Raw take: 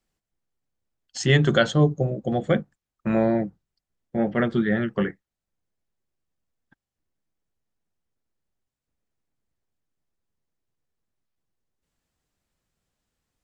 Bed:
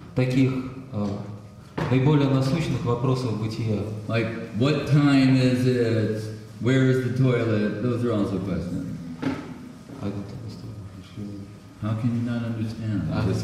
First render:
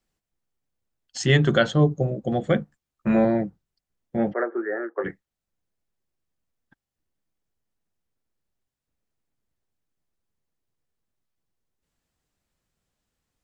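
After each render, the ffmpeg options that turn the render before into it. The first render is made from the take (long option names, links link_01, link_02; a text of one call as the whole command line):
ffmpeg -i in.wav -filter_complex "[0:a]asettb=1/sr,asplit=3[link_01][link_02][link_03];[link_01]atrim=end=1.394[link_04];[link_02]atrim=start=1.39:end=1.92,asetpts=PTS-STARTPTS,afade=type=in:duration=0.004:curve=qsin,afade=type=out:start_time=0.526:duration=0.004:curve=qsin,highshelf=frequency=6200:gain=-7.5[link_05];[link_03]atrim=start=1.916[link_06];[link_04][link_05]acrossfade=duration=0.004:curve1=hsin:curve2=qsin[link_07];[link_07][link_06]acrossfade=duration=0.004:curve1=qsin:curve2=hsin,asettb=1/sr,asplit=3[link_08][link_09][link_10];[link_08]atrim=end=2.604[link_11];[link_09]atrim=start=2.6:end=3.25,asetpts=PTS-STARTPTS,afade=type=in:duration=0.004:curve=qsin,afade=type=out:start_time=0.646:duration=0.004:curve=qsin,asplit=2[link_12][link_13];[link_13]adelay=14,volume=-4.5dB[link_14];[link_12][link_14]amix=inputs=2:normalize=0,atrim=end_sample=28665[link_15];[link_10]atrim=start=3.246[link_16];[link_11][link_15]acrossfade=duration=0.004:curve1=hsin:curve2=qsin[link_17];[link_17][link_16]acrossfade=duration=0.004:curve1=qsin:curve2=hsin,asplit=3[link_18][link_19][link_20];[link_18]afade=type=out:start_time=4.32:duration=0.02[link_21];[link_19]asuperpass=centerf=760:order=12:qfactor=0.53,afade=type=in:start_time=4.32:duration=0.02,afade=type=out:start_time=5.04:duration=0.02[link_22];[link_20]afade=type=in:start_time=5.04:duration=0.02[link_23];[link_21][link_22][link_23]amix=inputs=3:normalize=0" out.wav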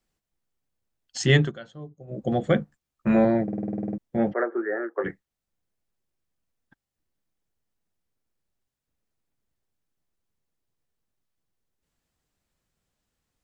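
ffmpeg -i in.wav -filter_complex "[0:a]asplit=14[link_01][link_02][link_03][link_04][link_05][link_06][link_07][link_08][link_09][link_10][link_11][link_12][link_13][link_14];[link_01]atrim=end=1.52,asetpts=PTS-STARTPTS,afade=type=out:start_time=1.39:duration=0.13:silence=0.0794328[link_15];[link_02]atrim=start=1.52:end=2.07,asetpts=PTS-STARTPTS,volume=-22dB[link_16];[link_03]atrim=start=2.07:end=3.482,asetpts=PTS-STARTPTS,afade=type=in:duration=0.13:silence=0.0794328[link_17];[link_04]atrim=start=3.428:end=3.482[link_18];[link_05]atrim=start=3.428:end=3.482[link_19];[link_06]atrim=start=3.428:end=3.482[link_20];[link_07]atrim=start=3.428:end=3.482[link_21];[link_08]atrim=start=3.428:end=3.482[link_22];[link_09]atrim=start=3.428:end=3.482[link_23];[link_10]atrim=start=3.428:end=3.482[link_24];[link_11]atrim=start=3.428:end=3.482[link_25];[link_12]atrim=start=3.428:end=3.482[link_26];[link_13]atrim=start=3.428:end=3.482[link_27];[link_14]atrim=start=3.978[link_28];[link_15][link_16][link_17]concat=n=3:v=0:a=1[link_29];[link_29][link_18]acrossfade=duration=0.004:curve1=hsin:curve2=hsin[link_30];[link_30][link_19]acrossfade=duration=0.004:curve1=hsin:curve2=hsin[link_31];[link_31][link_20]acrossfade=duration=0.004:curve1=hsin:curve2=hsin[link_32];[link_32][link_21]acrossfade=duration=0.004:curve1=hsin:curve2=hsin[link_33];[link_33][link_22]acrossfade=duration=0.004:curve1=hsin:curve2=hsin[link_34];[link_34][link_23]acrossfade=duration=0.004:curve1=hsin:curve2=hsin[link_35];[link_35][link_24]acrossfade=duration=0.004:curve1=hsin:curve2=hsin[link_36];[link_36][link_25]acrossfade=duration=0.004:curve1=hsin:curve2=hsin[link_37];[link_37][link_26]acrossfade=duration=0.004:curve1=hsin:curve2=hsin[link_38];[link_38][link_27]acrossfade=duration=0.004:curve1=hsin:curve2=hsin[link_39];[link_39][link_28]acrossfade=duration=0.004:curve1=hsin:curve2=hsin" out.wav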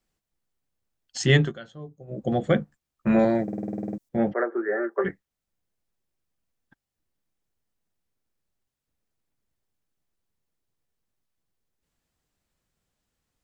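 ffmpeg -i in.wav -filter_complex "[0:a]asettb=1/sr,asplit=3[link_01][link_02][link_03];[link_01]atrim=end=1.384[link_04];[link_02]atrim=start=1.38:end=2.14,asetpts=PTS-STARTPTS,afade=type=in:duration=0.004:curve=qsin,afade=type=out:start_time=0.756:duration=0.004:curve=qsin,asplit=2[link_05][link_06];[link_06]adelay=18,volume=-11.5dB[link_07];[link_05][link_07]amix=inputs=2:normalize=0,atrim=end_sample=33516[link_08];[link_03]atrim=start=2.136[link_09];[link_04][link_08]acrossfade=duration=0.004:curve1=hsin:curve2=qsin[link_10];[link_10][link_09]acrossfade=duration=0.004:curve1=qsin:curve2=hsin,asettb=1/sr,asplit=3[link_11][link_12][link_13];[link_11]atrim=end=3.194[link_14];[link_12]atrim=start=3.19:end=4.09,asetpts=PTS-STARTPTS,afade=type=in:duration=0.004:curve=qsin,afade=type=out:start_time=0.896:duration=0.004:curve=qsin,bass=frequency=250:gain=-3,treble=frequency=4000:gain=13[link_15];[link_13]atrim=start=4.086[link_16];[link_14][link_15]acrossfade=duration=0.004:curve1=hsin:curve2=qsin[link_17];[link_17][link_16]acrossfade=duration=0.004:curve1=qsin:curve2=hsin,asettb=1/sr,asplit=3[link_18][link_19][link_20];[link_18]atrim=end=4.684[link_21];[link_19]atrim=start=4.68:end=5.09,asetpts=PTS-STARTPTS,afade=type=in:duration=0.004:curve=qsin,afade=type=out:start_time=0.406:duration=0.004:curve=qsin,aecho=1:1:5.1:0.8,atrim=end_sample=18081[link_22];[link_20]atrim=start=5.086[link_23];[link_21][link_22]acrossfade=duration=0.004:curve1=hsin:curve2=qsin[link_24];[link_24][link_23]acrossfade=duration=0.004:curve1=qsin:curve2=hsin" out.wav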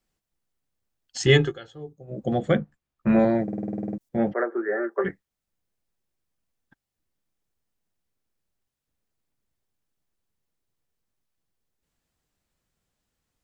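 ffmpeg -i in.wav -filter_complex "[0:a]asettb=1/sr,asplit=3[link_01][link_02][link_03];[link_01]atrim=end=1.264[link_04];[link_02]atrim=start=1.26:end=1.93,asetpts=PTS-STARTPTS,afade=type=in:duration=0.004:curve=qsin,afade=type=out:start_time=0.666:duration=0.004:curve=qsin,aecho=1:1:2.4:0.78,atrim=end_sample=29547[link_05];[link_03]atrim=start=1.926[link_06];[link_04][link_05]acrossfade=duration=0.004:curve1=hsin:curve2=qsin[link_07];[link_07][link_06]acrossfade=duration=0.004:curve1=qsin:curve2=hsin,asettb=1/sr,asplit=3[link_08][link_09][link_10];[link_08]atrim=end=2.574[link_11];[link_09]atrim=start=2.57:end=4.01,asetpts=PTS-STARTPTS,afade=type=in:duration=0.004:curve=qsin,afade=type=out:start_time=1.436:duration=0.004:curve=qsin,bass=frequency=250:gain=2,treble=frequency=4000:gain=-8[link_12];[link_10]atrim=start=4.006[link_13];[link_11][link_12]acrossfade=duration=0.004:curve1=hsin:curve2=qsin[link_14];[link_14][link_13]acrossfade=duration=0.004:curve1=qsin:curve2=hsin" out.wav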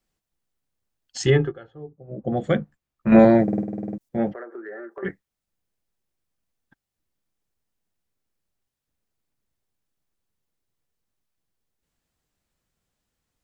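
ffmpeg -i in.wav -filter_complex "[0:a]asplit=3[link_01][link_02][link_03];[link_01]afade=type=out:start_time=1.29:duration=0.02[link_04];[link_02]lowpass=1500,afade=type=in:start_time=1.29:duration=0.02,afade=type=out:start_time=2.36:duration=0.02[link_05];[link_03]afade=type=in:start_time=2.36:duration=0.02[link_06];[link_04][link_05][link_06]amix=inputs=3:normalize=0,asettb=1/sr,asplit=3[link_07][link_08][link_09];[link_07]atrim=end=4.324[link_10];[link_08]atrim=start=4.32:end=5.03,asetpts=PTS-STARTPTS,afade=type=in:duration=0.004:curve=qsin,afade=type=out:start_time=0.706:duration=0.004:curve=qsin,acompressor=threshold=-34dB:ratio=6:attack=3.2:release=140:knee=1:detection=peak[link_11];[link_09]atrim=start=5.026[link_12];[link_10][link_11]acrossfade=duration=0.004:curve1=hsin:curve2=qsin[link_13];[link_13][link_12]acrossfade=duration=0.004:curve1=qsin:curve2=hsin,asplit=3[link_14][link_15][link_16];[link_14]atrim=end=3.122[link_17];[link_15]atrim=start=3.118:end=3.632,asetpts=PTS-STARTPTS,volume=7dB[link_18];[link_16]atrim=start=3.628[link_19];[link_17][link_18]acrossfade=duration=0.004:curve1=hsin:curve2=hsin[link_20];[link_20][link_19]acrossfade=duration=0.004:curve1=hsin:curve2=hsin" out.wav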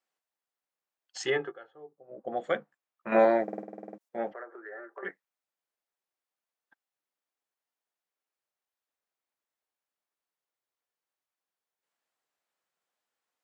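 ffmpeg -i in.wav -af "highpass=680,highshelf=frequency=2500:gain=-9.5" out.wav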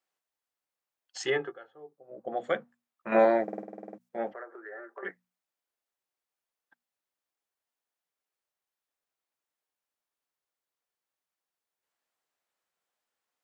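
ffmpeg -i in.wav -af "bandreject=frequency=60:width_type=h:width=6,bandreject=frequency=120:width_type=h:width=6,bandreject=frequency=180:width_type=h:width=6,bandreject=frequency=240:width_type=h:width=6" out.wav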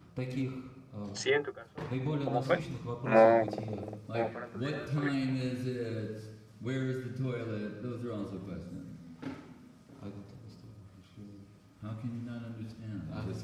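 ffmpeg -i in.wav -i bed.wav -filter_complex "[1:a]volume=-14.5dB[link_01];[0:a][link_01]amix=inputs=2:normalize=0" out.wav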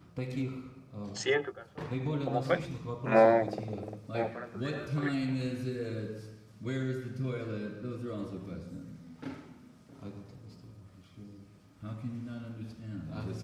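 ffmpeg -i in.wav -af "aecho=1:1:107:0.075" out.wav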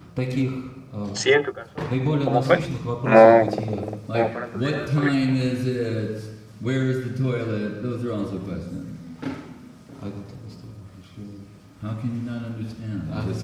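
ffmpeg -i in.wav -af "volume=11dB,alimiter=limit=-2dB:level=0:latency=1" out.wav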